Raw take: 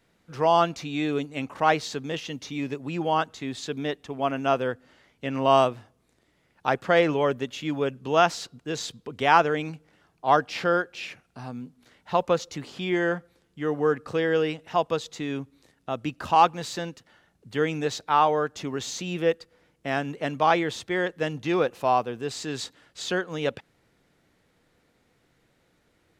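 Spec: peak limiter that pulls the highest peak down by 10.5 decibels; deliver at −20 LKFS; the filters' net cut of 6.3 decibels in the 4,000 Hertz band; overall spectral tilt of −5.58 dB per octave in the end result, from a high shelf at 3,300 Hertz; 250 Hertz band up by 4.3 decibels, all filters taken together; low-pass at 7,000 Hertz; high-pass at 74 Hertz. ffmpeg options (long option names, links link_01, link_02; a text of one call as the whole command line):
ffmpeg -i in.wav -af "highpass=74,lowpass=7000,equalizer=frequency=250:width_type=o:gain=6,highshelf=frequency=3300:gain=-4,equalizer=frequency=4000:width_type=o:gain=-5.5,volume=8dB,alimiter=limit=-7dB:level=0:latency=1" out.wav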